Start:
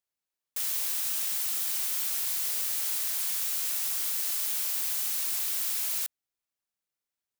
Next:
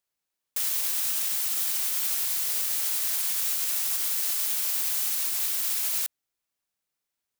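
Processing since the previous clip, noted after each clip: peak limiter -21.5 dBFS, peak gain reduction 4.5 dB; trim +4.5 dB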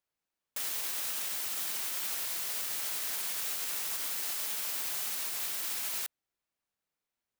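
treble shelf 3.5 kHz -8.5 dB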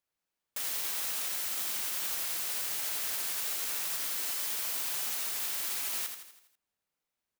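feedback delay 82 ms, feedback 51%, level -7 dB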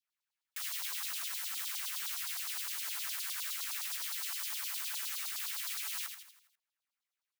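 de-hum 60.95 Hz, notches 16; LFO high-pass saw down 9.7 Hz 850–4500 Hz; trim -5.5 dB

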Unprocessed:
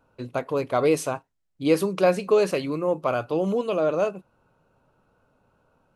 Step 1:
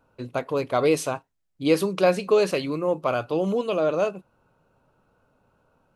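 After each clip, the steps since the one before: dynamic bell 3.7 kHz, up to +4 dB, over -44 dBFS, Q 1.2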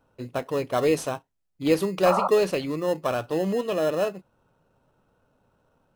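in parallel at -9 dB: sample-and-hold 19×; on the sum: painted sound noise, 2.05–2.28 s, 510–1400 Hz -20 dBFS; trim -3.5 dB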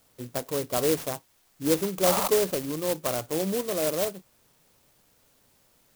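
in parallel at -10 dB: word length cut 8-bit, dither triangular; on the sum: sampling jitter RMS 0.13 ms; trim -5 dB

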